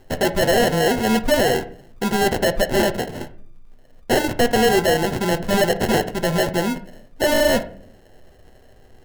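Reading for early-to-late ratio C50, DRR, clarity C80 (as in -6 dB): 15.0 dB, 8.5 dB, 19.0 dB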